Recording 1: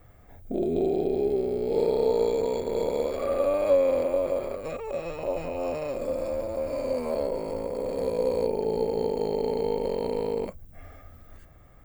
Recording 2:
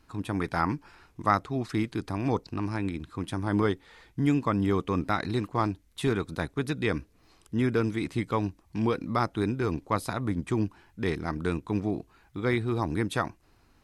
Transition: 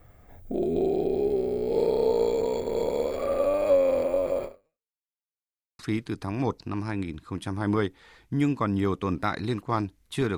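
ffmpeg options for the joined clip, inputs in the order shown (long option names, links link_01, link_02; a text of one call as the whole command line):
ffmpeg -i cue0.wav -i cue1.wav -filter_complex "[0:a]apad=whole_dur=10.37,atrim=end=10.37,asplit=2[link_01][link_02];[link_01]atrim=end=4.99,asetpts=PTS-STARTPTS,afade=type=out:start_time=4.44:duration=0.55:curve=exp[link_03];[link_02]atrim=start=4.99:end=5.79,asetpts=PTS-STARTPTS,volume=0[link_04];[1:a]atrim=start=1.65:end=6.23,asetpts=PTS-STARTPTS,afade=type=in:duration=0.004:curve=hsin[link_05];[link_03][link_04][link_05]concat=n=3:v=0:a=1" out.wav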